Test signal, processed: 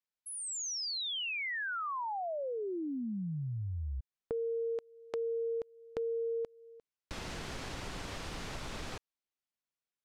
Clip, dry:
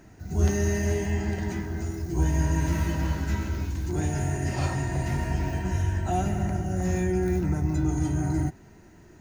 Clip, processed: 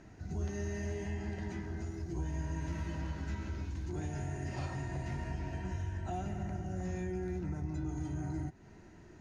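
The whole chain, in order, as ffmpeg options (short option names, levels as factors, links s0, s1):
-af "lowpass=6100,acompressor=threshold=0.0178:ratio=2.5,volume=0.668"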